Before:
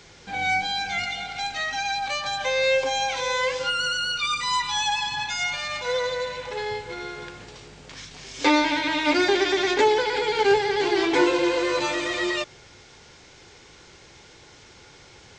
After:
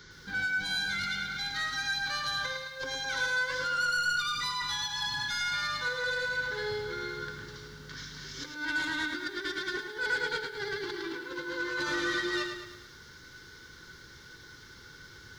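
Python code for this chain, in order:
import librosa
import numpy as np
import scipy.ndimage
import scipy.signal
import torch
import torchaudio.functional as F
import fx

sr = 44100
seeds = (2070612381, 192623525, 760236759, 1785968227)

p1 = fx.over_compress(x, sr, threshold_db=-26.0, ratio=-0.5)
p2 = fx.fixed_phaser(p1, sr, hz=2600.0, stages=6)
p3 = fx.small_body(p2, sr, hz=(1500.0, 2700.0), ring_ms=95, db=17)
p4 = 10.0 ** (-22.0 / 20.0) * np.tanh(p3 / 10.0 ** (-22.0 / 20.0))
p5 = p4 + fx.echo_single(p4, sr, ms=81, db=-13.5, dry=0)
p6 = fx.echo_crushed(p5, sr, ms=107, feedback_pct=55, bits=9, wet_db=-7)
y = p6 * librosa.db_to_amplitude(-4.0)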